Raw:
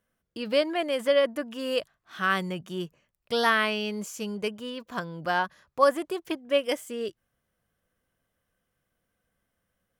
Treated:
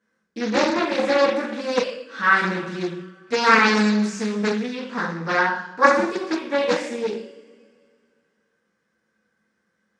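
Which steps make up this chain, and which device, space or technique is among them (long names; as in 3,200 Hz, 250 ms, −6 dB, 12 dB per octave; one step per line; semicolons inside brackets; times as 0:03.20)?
coupled-rooms reverb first 0.66 s, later 2.3 s, from −20 dB, DRR −7.5 dB
full-range speaker at full volume (highs frequency-modulated by the lows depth 0.68 ms; loudspeaker in its box 180–7,100 Hz, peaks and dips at 200 Hz +7 dB, 660 Hz −9 dB, 1,600 Hz +4 dB, 3,100 Hz −9 dB)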